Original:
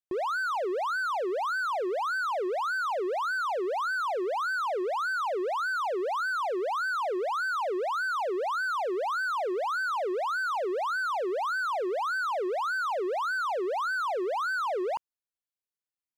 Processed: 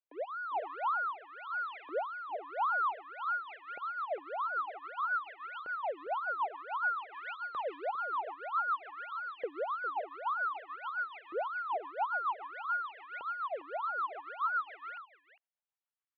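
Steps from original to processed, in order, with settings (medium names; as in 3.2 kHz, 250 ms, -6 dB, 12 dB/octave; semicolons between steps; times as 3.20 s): 7.14–7.85 s: tilt EQ +2.5 dB/octave; peak limiter -29.5 dBFS, peak gain reduction 6 dB; mistuned SSB -79 Hz 460–3300 Hz; LFO high-pass saw up 0.53 Hz 500–2200 Hz; delay 404 ms -12 dB; rotary cabinet horn 1 Hz, later 7 Hz, at 2.89 s; trim -1.5 dB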